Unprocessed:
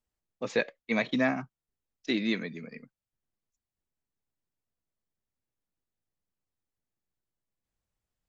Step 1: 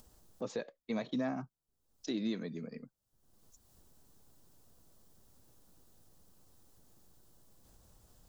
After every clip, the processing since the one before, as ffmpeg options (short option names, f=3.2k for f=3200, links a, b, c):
-af "equalizer=f=2.2k:w=1.3:g=-13,acompressor=mode=upward:threshold=-41dB:ratio=2.5,alimiter=level_in=2.5dB:limit=-24dB:level=0:latency=1:release=247,volume=-2.5dB"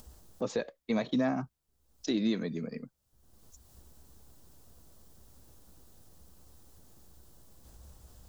-af "equalizer=f=65:w=4:g=13,volume=6dB"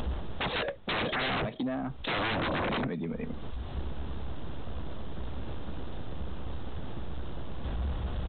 -af "acompressor=threshold=-37dB:ratio=4,aecho=1:1:470:0.158,aresample=8000,aeval=exprs='0.0447*sin(PI/2*10*val(0)/0.0447)':c=same,aresample=44100"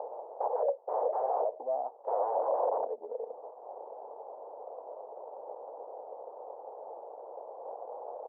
-af "asuperpass=centerf=650:order=8:qfactor=1.4,volume=6.5dB"